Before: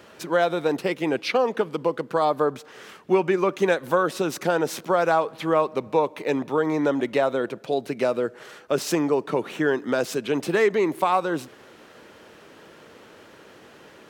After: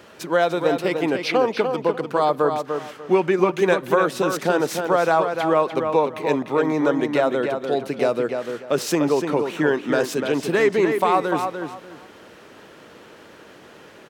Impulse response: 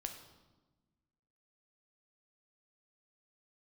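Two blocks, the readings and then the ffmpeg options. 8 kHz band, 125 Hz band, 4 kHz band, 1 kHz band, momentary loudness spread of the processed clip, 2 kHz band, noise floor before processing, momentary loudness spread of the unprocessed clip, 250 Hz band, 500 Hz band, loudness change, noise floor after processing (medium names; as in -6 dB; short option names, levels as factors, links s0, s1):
+2.5 dB, +3.0 dB, +2.5 dB, +3.0 dB, 6 LU, +3.0 dB, -49 dBFS, 6 LU, +3.0 dB, +3.0 dB, +2.5 dB, -46 dBFS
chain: -filter_complex "[0:a]asplit=2[s0][s1];[s1]adelay=296,lowpass=f=4500:p=1,volume=0.501,asplit=2[s2][s3];[s3]adelay=296,lowpass=f=4500:p=1,volume=0.24,asplit=2[s4][s5];[s5]adelay=296,lowpass=f=4500:p=1,volume=0.24[s6];[s0][s2][s4][s6]amix=inputs=4:normalize=0,volume=1.26"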